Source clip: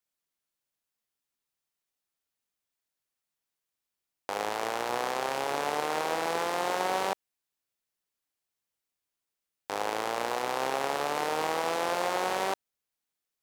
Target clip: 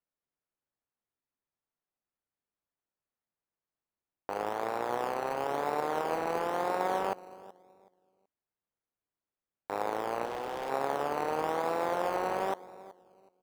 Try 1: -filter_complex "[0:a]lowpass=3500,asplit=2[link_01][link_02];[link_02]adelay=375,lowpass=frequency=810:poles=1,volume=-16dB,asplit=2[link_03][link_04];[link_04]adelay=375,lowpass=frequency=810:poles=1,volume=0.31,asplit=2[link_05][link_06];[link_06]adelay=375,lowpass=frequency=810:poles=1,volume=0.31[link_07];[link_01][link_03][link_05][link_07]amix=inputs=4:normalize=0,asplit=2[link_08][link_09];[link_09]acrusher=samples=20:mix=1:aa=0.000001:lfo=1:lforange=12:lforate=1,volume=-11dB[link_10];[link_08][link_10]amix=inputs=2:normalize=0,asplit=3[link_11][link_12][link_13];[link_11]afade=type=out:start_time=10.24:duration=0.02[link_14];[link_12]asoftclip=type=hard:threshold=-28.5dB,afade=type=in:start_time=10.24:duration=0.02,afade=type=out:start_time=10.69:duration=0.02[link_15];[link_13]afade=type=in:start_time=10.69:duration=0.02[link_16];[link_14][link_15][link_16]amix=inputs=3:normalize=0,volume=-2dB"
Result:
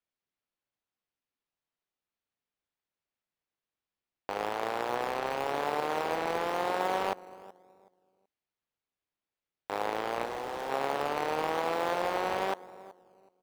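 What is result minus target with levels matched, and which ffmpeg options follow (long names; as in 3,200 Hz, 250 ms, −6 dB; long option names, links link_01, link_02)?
4,000 Hz band +5.0 dB
-filter_complex "[0:a]lowpass=1600,asplit=2[link_01][link_02];[link_02]adelay=375,lowpass=frequency=810:poles=1,volume=-16dB,asplit=2[link_03][link_04];[link_04]adelay=375,lowpass=frequency=810:poles=1,volume=0.31,asplit=2[link_05][link_06];[link_06]adelay=375,lowpass=frequency=810:poles=1,volume=0.31[link_07];[link_01][link_03][link_05][link_07]amix=inputs=4:normalize=0,asplit=2[link_08][link_09];[link_09]acrusher=samples=20:mix=1:aa=0.000001:lfo=1:lforange=12:lforate=1,volume=-11dB[link_10];[link_08][link_10]amix=inputs=2:normalize=0,asplit=3[link_11][link_12][link_13];[link_11]afade=type=out:start_time=10.24:duration=0.02[link_14];[link_12]asoftclip=type=hard:threshold=-28.5dB,afade=type=in:start_time=10.24:duration=0.02,afade=type=out:start_time=10.69:duration=0.02[link_15];[link_13]afade=type=in:start_time=10.69:duration=0.02[link_16];[link_14][link_15][link_16]amix=inputs=3:normalize=0,volume=-2dB"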